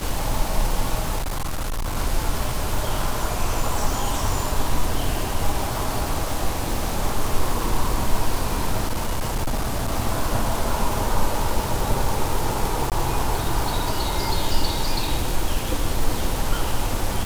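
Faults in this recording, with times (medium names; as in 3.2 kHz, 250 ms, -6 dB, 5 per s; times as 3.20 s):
crackle 580 per s -26 dBFS
1.18–1.97 s: clipped -22 dBFS
8.87–9.93 s: clipped -19 dBFS
12.90–12.92 s: dropout 18 ms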